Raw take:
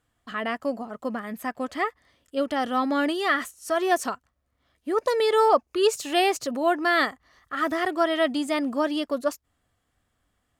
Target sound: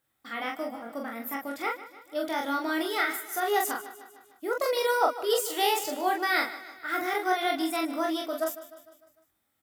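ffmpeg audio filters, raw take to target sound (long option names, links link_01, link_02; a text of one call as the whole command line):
ffmpeg -i in.wav -filter_complex "[0:a]highpass=frequency=190:poles=1,highshelf=frequency=7900:gain=9,asplit=2[link_01][link_02];[link_02]aecho=0:1:24|48:0.531|0.668[link_03];[link_01][link_03]amix=inputs=2:normalize=0,aexciter=amount=1.9:drive=6.8:freq=11000,asplit=2[link_04][link_05];[link_05]aecho=0:1:166|332|498|664|830:0.178|0.096|0.0519|0.028|0.0151[link_06];[link_04][link_06]amix=inputs=2:normalize=0,asetrate=48510,aresample=44100,volume=-6dB" out.wav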